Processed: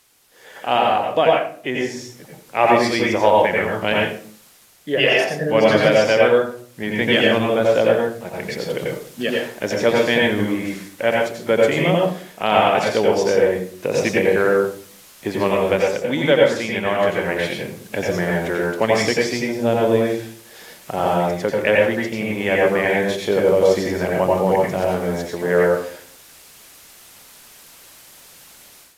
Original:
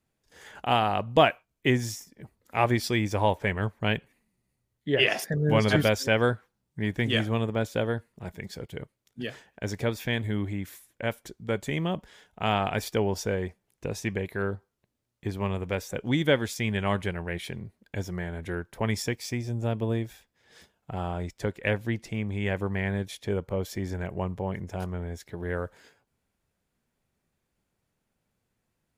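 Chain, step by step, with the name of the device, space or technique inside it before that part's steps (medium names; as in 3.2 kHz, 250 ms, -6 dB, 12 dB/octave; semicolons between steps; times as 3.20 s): filmed off a television (band-pass 250–6600 Hz; peaking EQ 560 Hz +5 dB 0.38 oct; reverberation RT60 0.50 s, pre-delay 82 ms, DRR -2.5 dB; white noise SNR 30 dB; level rider gain up to 13 dB; trim -1 dB; AAC 64 kbps 32 kHz)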